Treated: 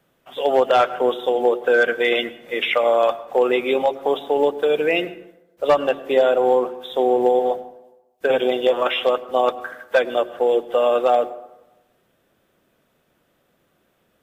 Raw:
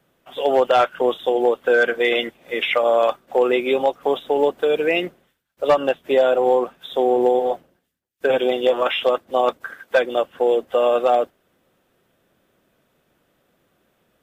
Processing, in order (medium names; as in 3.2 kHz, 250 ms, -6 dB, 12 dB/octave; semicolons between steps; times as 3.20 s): de-hum 45.5 Hz, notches 9; on a send: reverberation RT60 1.0 s, pre-delay 87 ms, DRR 16.5 dB